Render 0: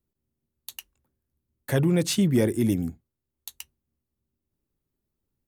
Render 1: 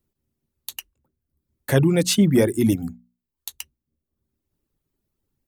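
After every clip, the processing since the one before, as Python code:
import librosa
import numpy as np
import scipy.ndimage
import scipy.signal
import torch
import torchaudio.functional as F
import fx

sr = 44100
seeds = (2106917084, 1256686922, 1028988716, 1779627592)

y = fx.dereverb_blind(x, sr, rt60_s=0.68)
y = fx.hum_notches(y, sr, base_hz=60, count=4)
y = y * librosa.db_to_amplitude(6.0)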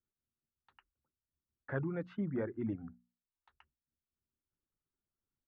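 y = fx.rider(x, sr, range_db=10, speed_s=0.5)
y = fx.ladder_lowpass(y, sr, hz=1600.0, resonance_pct=60)
y = y * librosa.db_to_amplitude(-8.0)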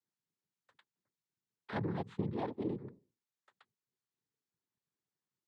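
y = fx.noise_vocoder(x, sr, seeds[0], bands=6)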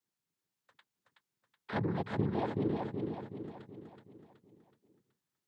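y = fx.echo_feedback(x, sr, ms=374, feedback_pct=48, wet_db=-4)
y = y * librosa.db_to_amplitude(3.0)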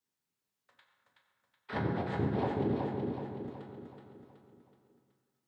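y = fx.rev_fdn(x, sr, rt60_s=1.8, lf_ratio=0.8, hf_ratio=0.6, size_ms=73.0, drr_db=-0.5)
y = y * librosa.db_to_amplitude(-1.5)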